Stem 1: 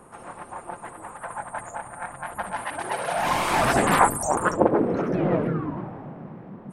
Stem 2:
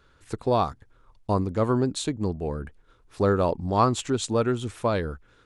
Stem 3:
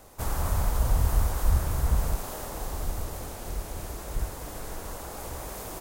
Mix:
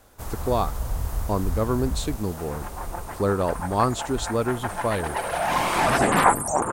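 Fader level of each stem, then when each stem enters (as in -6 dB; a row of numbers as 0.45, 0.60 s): +0.5, -1.0, -4.0 dB; 2.25, 0.00, 0.00 s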